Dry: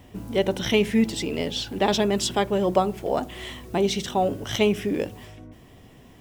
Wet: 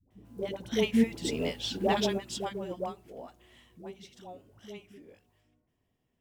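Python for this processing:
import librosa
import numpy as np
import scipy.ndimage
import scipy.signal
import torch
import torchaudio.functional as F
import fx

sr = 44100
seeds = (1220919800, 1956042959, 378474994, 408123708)

y = fx.doppler_pass(x, sr, speed_mps=7, closest_m=3.2, pass_at_s=1.43)
y = fx.dispersion(y, sr, late='highs', ms=108.0, hz=520.0)
y = fx.upward_expand(y, sr, threshold_db=-37.0, expansion=1.5)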